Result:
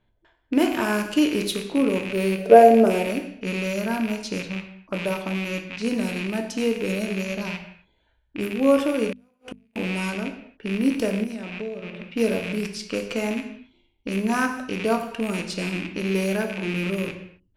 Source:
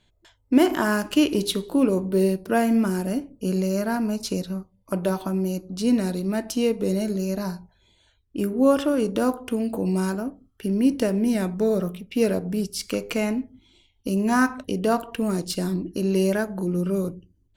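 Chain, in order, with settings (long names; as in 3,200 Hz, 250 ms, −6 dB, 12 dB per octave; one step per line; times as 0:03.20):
loose part that buzzes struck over −34 dBFS, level −19 dBFS
0:02.38–0:03.04: flat-topped bell 540 Hz +15.5 dB 1.2 octaves
reverb whose tail is shaped and stops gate 300 ms falling, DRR 5 dB
0:11.23–0:12.11: downward compressor 12 to 1, threshold −26 dBFS, peak gain reduction 13 dB
low-pass that shuts in the quiet parts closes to 1,800 Hz, open at −19 dBFS
0:09.12–0:09.76: gate with flip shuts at −18 dBFS, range −41 dB
mains-hum notches 50/100/150/200/250 Hz
level −2.5 dB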